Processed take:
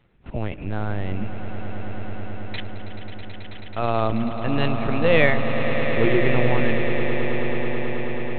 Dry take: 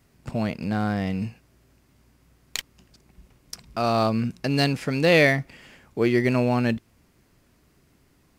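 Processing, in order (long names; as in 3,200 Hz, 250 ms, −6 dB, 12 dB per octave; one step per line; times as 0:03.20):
linear-prediction vocoder at 8 kHz pitch kept
echo that builds up and dies away 108 ms, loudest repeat 8, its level −12 dB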